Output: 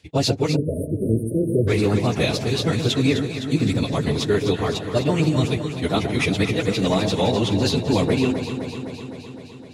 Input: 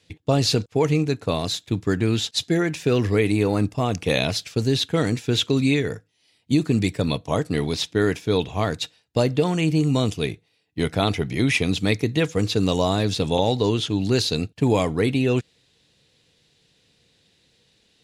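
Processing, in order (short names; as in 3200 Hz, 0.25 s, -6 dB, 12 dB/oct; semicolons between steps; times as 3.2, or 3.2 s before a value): plain phase-vocoder stretch 0.54×; echo with dull and thin repeats by turns 0.128 s, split 870 Hz, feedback 83%, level -7 dB; spectral delete 0.56–1.68, 650–8500 Hz; gain +3.5 dB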